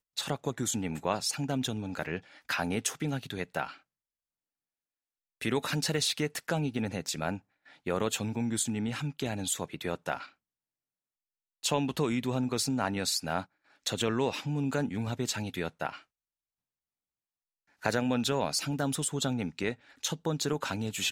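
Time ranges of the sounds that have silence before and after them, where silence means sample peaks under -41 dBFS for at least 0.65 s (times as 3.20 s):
5.41–10.26 s
11.64–15.98 s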